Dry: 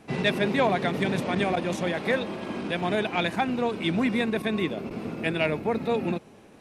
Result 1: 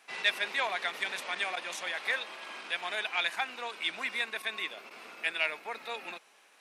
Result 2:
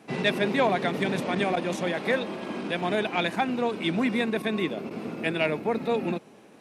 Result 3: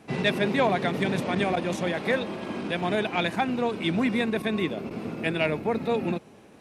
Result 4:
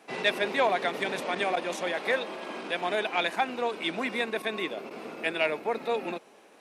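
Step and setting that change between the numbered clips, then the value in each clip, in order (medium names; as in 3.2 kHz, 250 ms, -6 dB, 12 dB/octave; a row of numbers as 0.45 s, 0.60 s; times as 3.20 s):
high-pass, cutoff frequency: 1.3 kHz, 160 Hz, 54 Hz, 460 Hz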